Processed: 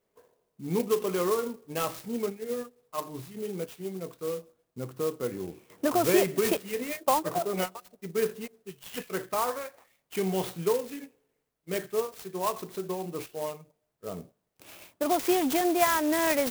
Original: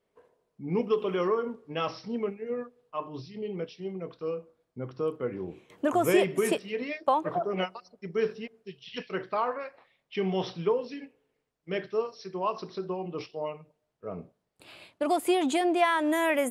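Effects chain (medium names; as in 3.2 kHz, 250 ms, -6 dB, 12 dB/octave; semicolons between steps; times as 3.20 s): treble shelf 6.2 kHz +8.5 dB; sampling jitter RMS 0.058 ms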